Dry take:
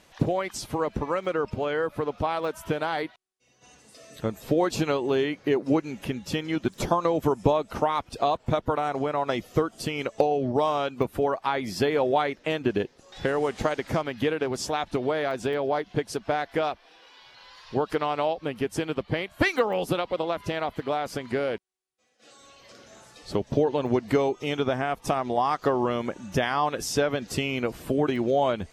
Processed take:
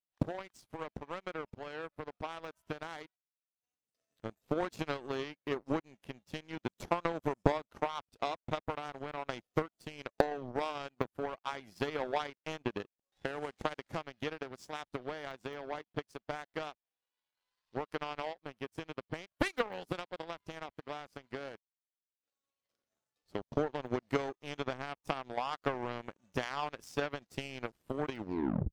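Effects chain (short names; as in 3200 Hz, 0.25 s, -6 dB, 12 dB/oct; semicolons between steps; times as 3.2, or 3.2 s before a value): tape stop at the end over 0.57 s; power-law curve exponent 2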